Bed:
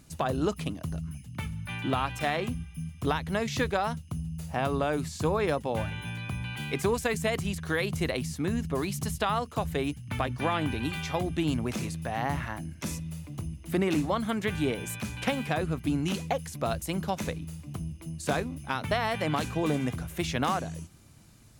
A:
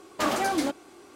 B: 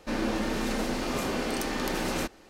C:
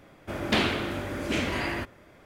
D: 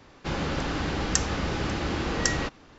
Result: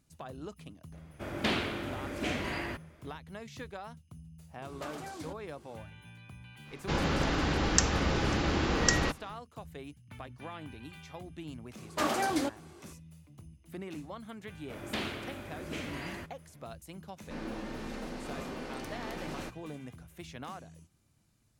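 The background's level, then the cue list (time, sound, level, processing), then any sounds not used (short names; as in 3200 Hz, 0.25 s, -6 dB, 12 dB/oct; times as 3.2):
bed -15.5 dB
0.92 add C -6 dB
4.62 add A -17.5 dB + three-band squash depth 70%
6.63 add D -0.5 dB, fades 0.10 s
11.78 add A -4 dB
14.41 add C -11.5 dB + high shelf 10000 Hz +7 dB
17.23 add B -10.5 dB + high shelf 5200 Hz -7.5 dB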